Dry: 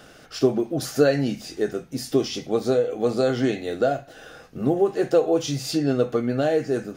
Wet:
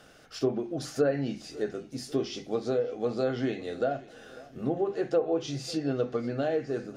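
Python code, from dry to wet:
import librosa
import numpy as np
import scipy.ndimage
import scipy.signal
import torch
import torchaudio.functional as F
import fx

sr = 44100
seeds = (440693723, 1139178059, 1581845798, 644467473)

y = fx.hum_notches(x, sr, base_hz=50, count=8)
y = fx.echo_feedback(y, sr, ms=548, feedback_pct=52, wet_db=-21.0)
y = fx.env_lowpass_down(y, sr, base_hz=1200.0, full_db=-12.0)
y = F.gain(torch.from_numpy(y), -7.0).numpy()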